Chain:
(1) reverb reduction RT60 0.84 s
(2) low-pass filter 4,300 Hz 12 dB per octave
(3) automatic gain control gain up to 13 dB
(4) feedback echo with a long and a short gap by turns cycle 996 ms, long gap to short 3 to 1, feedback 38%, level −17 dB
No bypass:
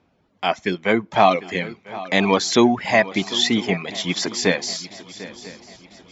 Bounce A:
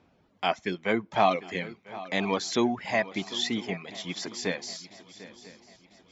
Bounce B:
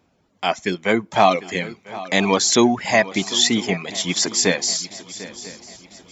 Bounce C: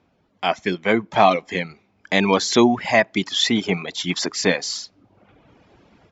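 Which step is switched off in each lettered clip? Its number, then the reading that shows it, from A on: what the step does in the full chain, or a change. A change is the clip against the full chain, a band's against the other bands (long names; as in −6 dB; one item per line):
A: 3, 1 kHz band +2.0 dB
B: 2, 4 kHz band +2.5 dB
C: 4, echo-to-direct ratio −15.0 dB to none audible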